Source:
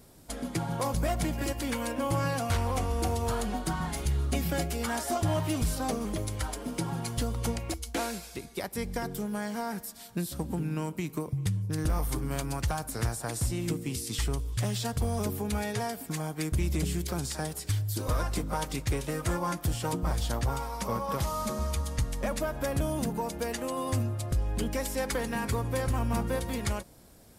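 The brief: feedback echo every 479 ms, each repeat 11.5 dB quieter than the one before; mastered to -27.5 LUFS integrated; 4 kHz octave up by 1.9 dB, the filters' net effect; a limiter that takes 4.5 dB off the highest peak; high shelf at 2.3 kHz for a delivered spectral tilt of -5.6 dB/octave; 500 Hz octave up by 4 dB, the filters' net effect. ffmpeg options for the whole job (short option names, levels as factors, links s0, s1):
-af "equalizer=f=500:t=o:g=5,highshelf=f=2300:g=-5.5,equalizer=f=4000:t=o:g=7.5,alimiter=limit=0.0794:level=0:latency=1,aecho=1:1:479|958|1437:0.266|0.0718|0.0194,volume=1.58"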